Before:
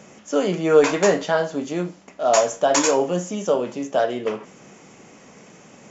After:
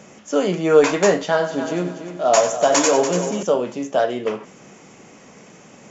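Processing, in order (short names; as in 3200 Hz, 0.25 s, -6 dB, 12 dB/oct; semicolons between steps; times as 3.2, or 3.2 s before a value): 1.21–3.43 multi-head echo 96 ms, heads first and third, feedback 46%, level -11 dB; gain +1.5 dB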